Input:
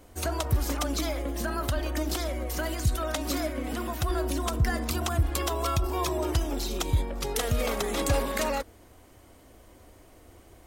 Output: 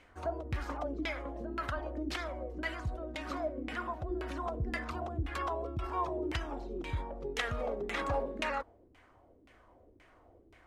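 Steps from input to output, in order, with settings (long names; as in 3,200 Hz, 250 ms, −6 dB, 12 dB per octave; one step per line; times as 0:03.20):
auto-filter low-pass saw down 1.9 Hz 280–2,400 Hz
first-order pre-emphasis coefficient 0.9
level +8.5 dB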